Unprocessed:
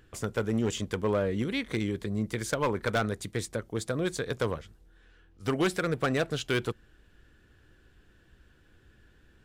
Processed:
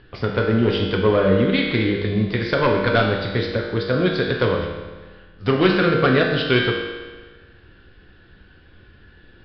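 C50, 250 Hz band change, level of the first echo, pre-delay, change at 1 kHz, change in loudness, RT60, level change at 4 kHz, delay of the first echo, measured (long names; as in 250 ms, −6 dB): 3.0 dB, +11.0 dB, no echo audible, 4 ms, +10.5 dB, +11.0 dB, 1.4 s, +12.5 dB, no echo audible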